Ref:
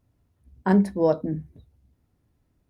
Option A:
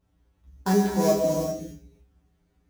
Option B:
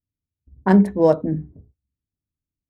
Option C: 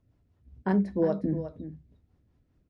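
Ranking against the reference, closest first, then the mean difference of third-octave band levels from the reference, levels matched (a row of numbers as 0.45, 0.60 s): B, C, A; 1.0, 3.5, 14.0 dB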